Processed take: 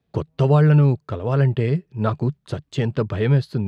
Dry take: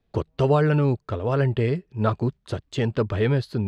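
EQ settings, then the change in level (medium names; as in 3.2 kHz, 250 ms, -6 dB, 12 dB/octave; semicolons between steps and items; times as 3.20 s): high-pass 66 Hz; peaking EQ 150 Hz +8 dB 0.48 oct; 0.0 dB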